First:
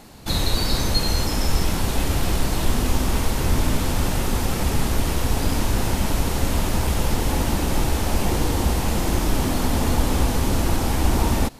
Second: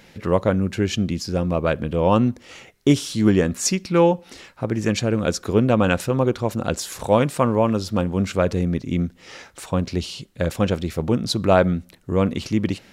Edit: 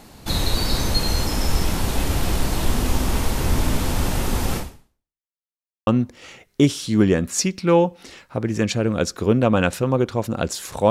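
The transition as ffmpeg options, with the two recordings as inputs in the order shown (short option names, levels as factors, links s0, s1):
-filter_complex "[0:a]apad=whole_dur=10.9,atrim=end=10.9,asplit=2[s0][s1];[s0]atrim=end=5.27,asetpts=PTS-STARTPTS,afade=t=out:st=4.57:d=0.7:c=exp[s2];[s1]atrim=start=5.27:end=5.87,asetpts=PTS-STARTPTS,volume=0[s3];[1:a]atrim=start=2.14:end=7.17,asetpts=PTS-STARTPTS,afade=t=in:d=0.004:c=hsin[s4];[s2][s3][s4]concat=n=3:v=0:a=1"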